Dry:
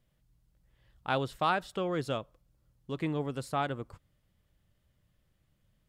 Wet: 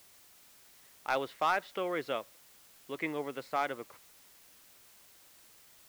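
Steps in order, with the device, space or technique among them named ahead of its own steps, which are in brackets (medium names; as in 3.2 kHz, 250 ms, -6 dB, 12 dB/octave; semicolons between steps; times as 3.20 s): drive-through speaker (band-pass 360–3600 Hz; peaking EQ 2.1 kHz +9.5 dB 0.35 oct; hard clipper -20.5 dBFS, distortion -17 dB; white noise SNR 21 dB)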